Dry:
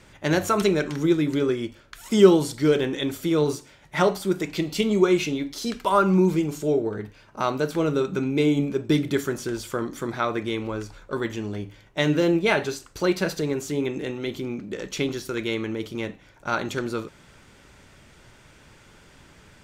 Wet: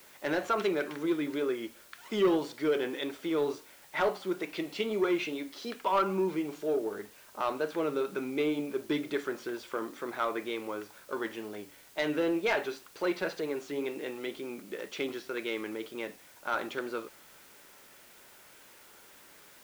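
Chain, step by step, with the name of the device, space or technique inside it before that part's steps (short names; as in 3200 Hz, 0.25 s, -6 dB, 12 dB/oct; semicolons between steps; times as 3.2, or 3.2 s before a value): tape answering machine (BPF 370–3300 Hz; soft clip -15.5 dBFS, distortion -14 dB; wow and flutter; white noise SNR 24 dB); gain -4 dB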